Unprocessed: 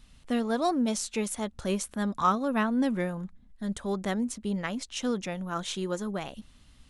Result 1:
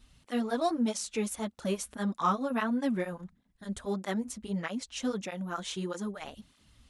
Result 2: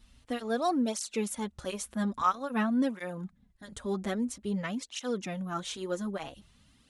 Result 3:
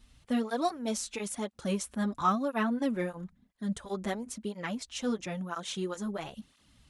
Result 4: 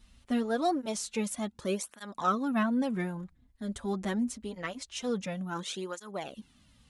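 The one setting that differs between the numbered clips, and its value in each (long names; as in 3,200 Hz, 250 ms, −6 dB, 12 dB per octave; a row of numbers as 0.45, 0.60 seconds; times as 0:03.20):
through-zero flanger with one copy inverted, nulls at: 1.6, 0.5, 0.99, 0.25 Hertz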